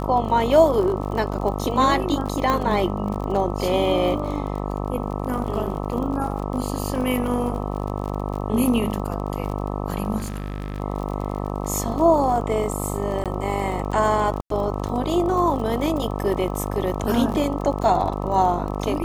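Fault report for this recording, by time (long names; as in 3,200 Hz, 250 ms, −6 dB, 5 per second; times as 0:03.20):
mains buzz 50 Hz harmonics 26 −27 dBFS
surface crackle 42 per second −29 dBFS
0:02.50: click −9 dBFS
0:10.17–0:10.80: clipping −24 dBFS
0:13.24–0:13.26: drop-out 17 ms
0:14.41–0:14.50: drop-out 93 ms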